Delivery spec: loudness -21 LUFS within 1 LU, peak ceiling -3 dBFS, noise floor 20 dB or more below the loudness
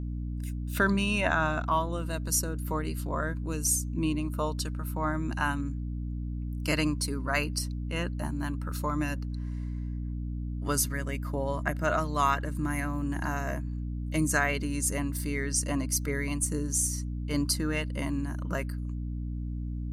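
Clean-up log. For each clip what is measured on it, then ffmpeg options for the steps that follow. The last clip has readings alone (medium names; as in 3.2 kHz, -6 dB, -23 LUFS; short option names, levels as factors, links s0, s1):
hum 60 Hz; highest harmonic 300 Hz; hum level -31 dBFS; loudness -30.5 LUFS; peak level -11.5 dBFS; loudness target -21.0 LUFS
-> -af "bandreject=f=60:t=h:w=6,bandreject=f=120:t=h:w=6,bandreject=f=180:t=h:w=6,bandreject=f=240:t=h:w=6,bandreject=f=300:t=h:w=6"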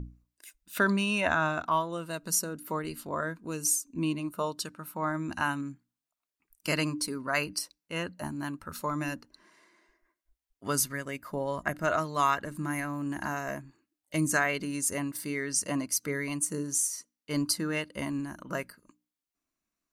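hum not found; loudness -31.0 LUFS; peak level -12.0 dBFS; loudness target -21.0 LUFS
-> -af "volume=3.16,alimiter=limit=0.708:level=0:latency=1"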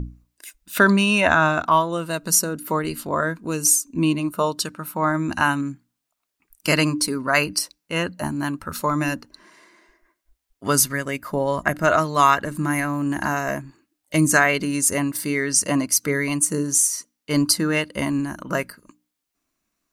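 loudness -21.0 LUFS; peak level -3.0 dBFS; noise floor -80 dBFS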